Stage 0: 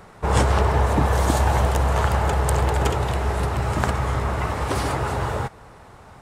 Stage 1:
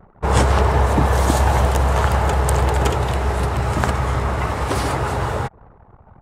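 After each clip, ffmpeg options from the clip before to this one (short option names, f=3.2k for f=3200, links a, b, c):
-af "anlmdn=0.251,volume=3dB"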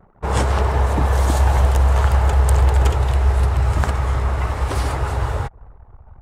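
-af "asubboost=boost=7:cutoff=76,volume=-3.5dB"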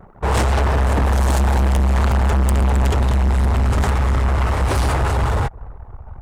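-af "asoftclip=type=tanh:threshold=-21.5dB,volume=8dB"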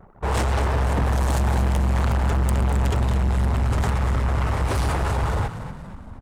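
-filter_complex "[0:a]asplit=6[a][b][c][d][e][f];[b]adelay=236,afreqshift=44,volume=-11.5dB[g];[c]adelay=472,afreqshift=88,volume=-18.2dB[h];[d]adelay=708,afreqshift=132,volume=-25dB[i];[e]adelay=944,afreqshift=176,volume=-31.7dB[j];[f]adelay=1180,afreqshift=220,volume=-38.5dB[k];[a][g][h][i][j][k]amix=inputs=6:normalize=0,volume=-5dB"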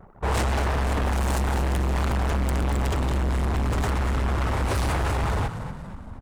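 -af "aeval=exprs='0.1*(abs(mod(val(0)/0.1+3,4)-2)-1)':c=same"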